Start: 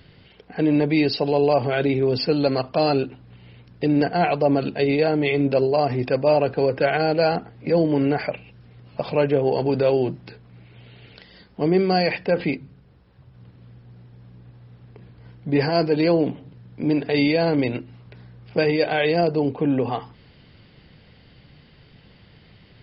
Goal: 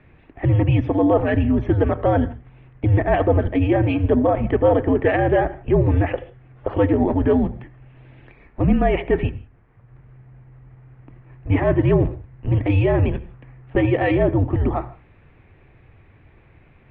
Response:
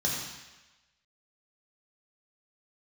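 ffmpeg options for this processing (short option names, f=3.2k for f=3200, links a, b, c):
-filter_complex "[0:a]asplit=2[a][b];[1:a]atrim=start_sample=2205,atrim=end_sample=6174,adelay=108[c];[b][c]afir=irnorm=-1:irlink=0,volume=-24.5dB[d];[a][d]amix=inputs=2:normalize=0,asetrate=59535,aresample=44100,highpass=f=160:t=q:w=0.5412,highpass=f=160:t=q:w=1.307,lowpass=f=2.6k:t=q:w=0.5176,lowpass=f=2.6k:t=q:w=0.7071,lowpass=f=2.6k:t=q:w=1.932,afreqshift=-290,volume=2.5dB"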